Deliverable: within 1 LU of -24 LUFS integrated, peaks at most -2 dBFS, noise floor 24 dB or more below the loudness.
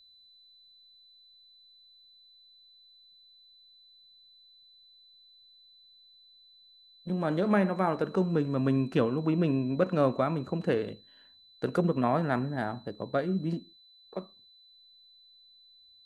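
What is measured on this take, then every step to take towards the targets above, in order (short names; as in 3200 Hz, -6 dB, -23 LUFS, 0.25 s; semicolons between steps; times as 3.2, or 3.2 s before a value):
steady tone 4000 Hz; tone level -56 dBFS; loudness -29.5 LUFS; peak -12.0 dBFS; loudness target -24.0 LUFS
-> notch 4000 Hz, Q 30; gain +5.5 dB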